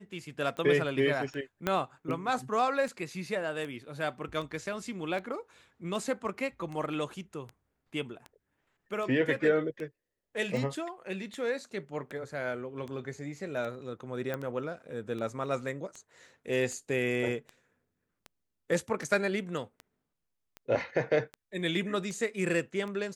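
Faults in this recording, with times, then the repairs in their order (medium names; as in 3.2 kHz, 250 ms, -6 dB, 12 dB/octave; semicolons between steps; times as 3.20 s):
tick 78 rpm -28 dBFS
1.67 s: pop -14 dBFS
14.34 s: pop -21 dBFS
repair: de-click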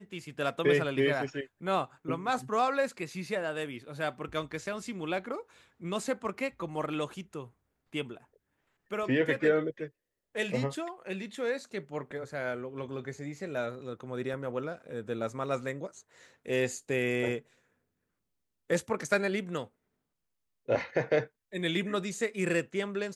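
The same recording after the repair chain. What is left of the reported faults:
1.67 s: pop
14.34 s: pop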